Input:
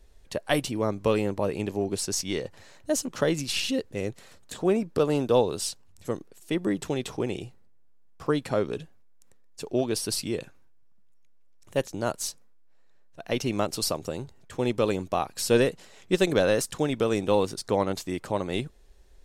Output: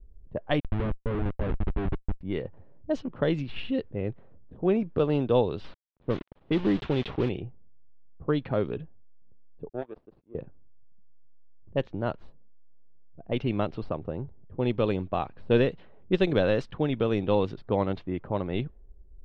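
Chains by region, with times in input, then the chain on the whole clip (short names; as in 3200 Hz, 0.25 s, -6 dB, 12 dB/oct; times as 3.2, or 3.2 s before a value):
0.6–2.21 running mean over 10 samples + Schmitt trigger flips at -28 dBFS
5.64–7.29 switching spikes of -25.5 dBFS + sample leveller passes 1 + requantised 6-bit, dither none
9.69–10.35 Chebyshev high-pass 490 Hz + expander -40 dBFS + power-law curve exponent 2
whole clip: Chebyshev low-pass 3500 Hz, order 3; low-pass opened by the level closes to 320 Hz, open at -20 dBFS; low shelf 170 Hz +8.5 dB; gain -2.5 dB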